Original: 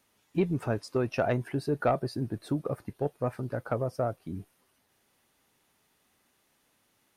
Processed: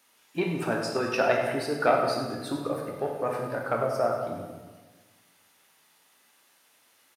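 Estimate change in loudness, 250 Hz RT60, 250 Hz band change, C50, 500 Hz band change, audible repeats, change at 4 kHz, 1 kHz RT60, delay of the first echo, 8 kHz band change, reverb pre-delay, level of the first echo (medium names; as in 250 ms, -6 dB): +3.5 dB, 1.5 s, 0.0 dB, 2.5 dB, +4.0 dB, 1, +9.5 dB, 1.3 s, 100 ms, no reading, 14 ms, -10.5 dB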